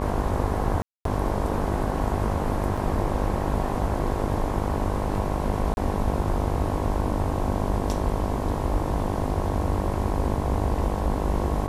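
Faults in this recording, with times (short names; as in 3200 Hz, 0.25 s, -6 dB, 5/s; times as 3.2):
buzz 50 Hz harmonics 22 -29 dBFS
0.82–1.05 gap 0.233 s
2.77 gap 5 ms
5.74–5.77 gap 31 ms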